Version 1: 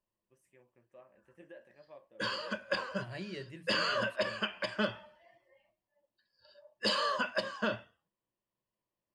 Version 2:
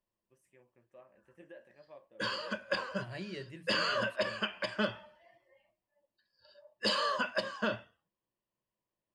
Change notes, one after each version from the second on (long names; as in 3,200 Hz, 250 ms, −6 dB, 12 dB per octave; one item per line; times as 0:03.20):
nothing changed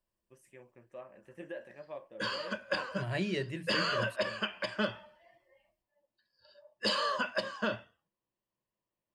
first voice +9.5 dB
second voice +9.0 dB